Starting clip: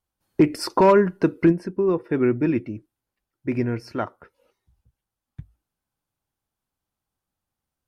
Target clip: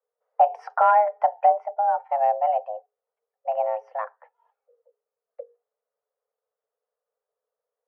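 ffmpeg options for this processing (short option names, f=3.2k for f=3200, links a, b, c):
-af "afreqshift=420,lowpass=1k"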